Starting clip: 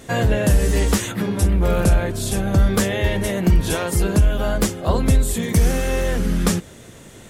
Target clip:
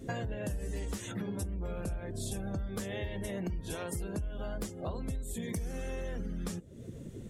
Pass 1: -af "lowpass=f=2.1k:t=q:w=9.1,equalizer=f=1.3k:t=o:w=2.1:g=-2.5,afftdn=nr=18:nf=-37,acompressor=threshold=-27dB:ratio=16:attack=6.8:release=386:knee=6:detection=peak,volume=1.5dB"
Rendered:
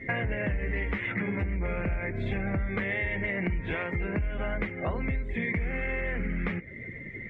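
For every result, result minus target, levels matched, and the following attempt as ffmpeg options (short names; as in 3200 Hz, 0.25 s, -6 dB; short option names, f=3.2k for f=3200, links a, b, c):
2000 Hz band +9.5 dB; compressor: peak gain reduction -6 dB
-af "equalizer=f=1.3k:t=o:w=2.1:g=-2.5,afftdn=nr=18:nf=-37,acompressor=threshold=-27dB:ratio=16:attack=6.8:release=386:knee=6:detection=peak,volume=1.5dB"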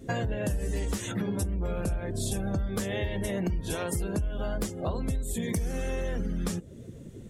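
compressor: peak gain reduction -6.5 dB
-af "equalizer=f=1.3k:t=o:w=2.1:g=-2.5,afftdn=nr=18:nf=-37,acompressor=threshold=-34dB:ratio=16:attack=6.8:release=386:knee=6:detection=peak,volume=1.5dB"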